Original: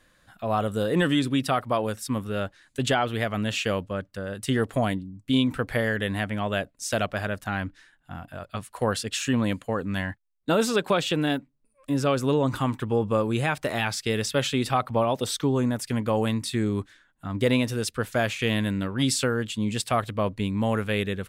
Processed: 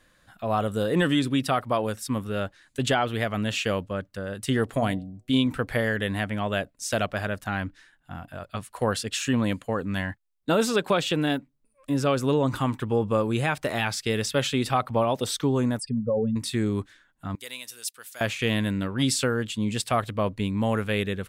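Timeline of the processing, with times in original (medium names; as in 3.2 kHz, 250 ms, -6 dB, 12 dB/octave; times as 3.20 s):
4.64–5.46 s: de-hum 123.4 Hz, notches 6
15.79–16.36 s: spectral contrast enhancement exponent 2.7
17.35–18.21 s: differentiator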